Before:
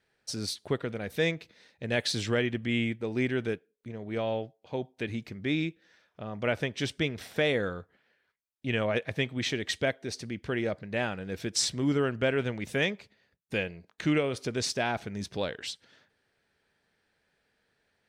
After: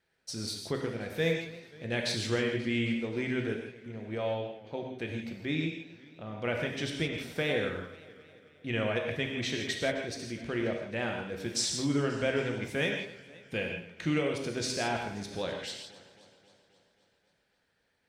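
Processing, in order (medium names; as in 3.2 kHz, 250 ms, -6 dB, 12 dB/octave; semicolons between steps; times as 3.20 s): gated-style reverb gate 190 ms flat, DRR 1.5 dB; modulated delay 266 ms, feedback 61%, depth 71 cents, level -19 dB; trim -4 dB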